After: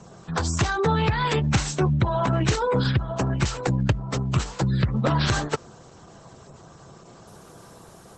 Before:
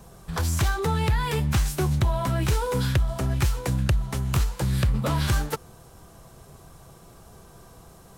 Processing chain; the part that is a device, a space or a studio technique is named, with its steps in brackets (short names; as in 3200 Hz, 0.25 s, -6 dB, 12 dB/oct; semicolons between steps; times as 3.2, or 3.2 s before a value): noise-suppressed video call (HPF 120 Hz 12 dB/oct; spectral gate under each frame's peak -30 dB strong; gain +5 dB; Opus 12 kbps 48000 Hz)